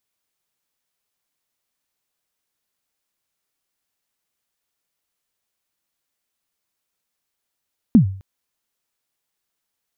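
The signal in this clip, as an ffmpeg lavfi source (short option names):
-f lavfi -i "aevalsrc='0.631*pow(10,-3*t/0.46)*sin(2*PI*(260*0.105/log(96/260)*(exp(log(96/260)*min(t,0.105)/0.105)-1)+96*max(t-0.105,0)))':d=0.26:s=44100"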